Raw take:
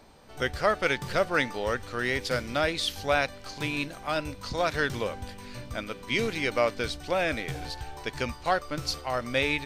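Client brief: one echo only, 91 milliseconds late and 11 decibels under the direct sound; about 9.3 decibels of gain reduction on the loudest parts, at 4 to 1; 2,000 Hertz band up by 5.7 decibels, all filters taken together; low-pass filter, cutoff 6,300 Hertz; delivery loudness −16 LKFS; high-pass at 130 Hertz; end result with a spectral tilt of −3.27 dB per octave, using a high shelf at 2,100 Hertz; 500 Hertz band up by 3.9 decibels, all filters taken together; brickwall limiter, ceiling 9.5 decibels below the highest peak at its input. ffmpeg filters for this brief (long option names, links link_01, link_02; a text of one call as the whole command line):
ffmpeg -i in.wav -af "highpass=130,lowpass=6300,equalizer=frequency=500:width_type=o:gain=4,equalizer=frequency=2000:width_type=o:gain=3.5,highshelf=frequency=2100:gain=6,acompressor=threshold=-27dB:ratio=4,alimiter=limit=-22dB:level=0:latency=1,aecho=1:1:91:0.282,volume=18dB" out.wav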